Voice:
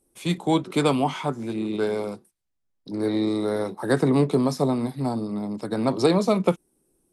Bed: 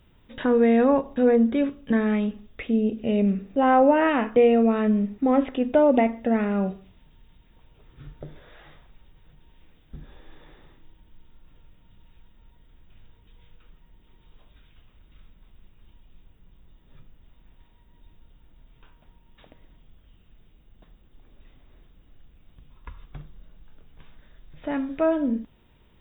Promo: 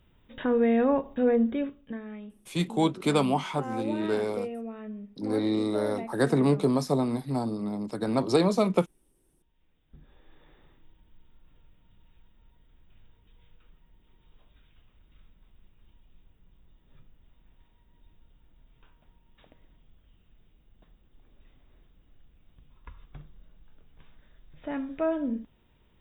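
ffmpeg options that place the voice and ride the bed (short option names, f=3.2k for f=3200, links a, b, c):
-filter_complex "[0:a]adelay=2300,volume=-3dB[a];[1:a]volume=8dB,afade=t=out:st=1.43:d=0.57:silence=0.211349,afade=t=in:st=9.52:d=1.31:silence=0.237137[b];[a][b]amix=inputs=2:normalize=0"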